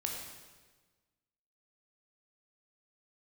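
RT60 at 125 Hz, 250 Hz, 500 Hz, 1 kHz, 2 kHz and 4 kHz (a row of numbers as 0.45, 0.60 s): 1.6, 1.5, 1.4, 1.3, 1.3, 1.2 s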